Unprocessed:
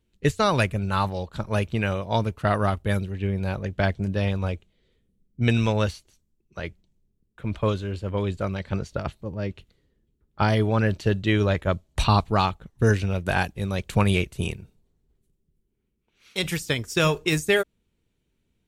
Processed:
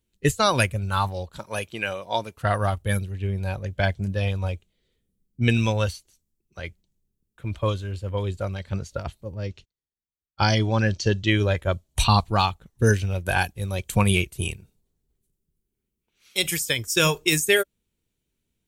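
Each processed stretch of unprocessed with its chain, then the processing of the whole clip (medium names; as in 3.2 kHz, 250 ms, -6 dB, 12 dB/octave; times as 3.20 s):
1.39–2.37 s: high-pass 330 Hz 6 dB/octave + tape noise reduction on one side only encoder only
9.44–11.30 s: resonant low-pass 5.9 kHz, resonance Q 2.5 + gate -53 dBFS, range -28 dB
whole clip: spectral noise reduction 7 dB; treble shelf 5 kHz +12 dB; trim +1 dB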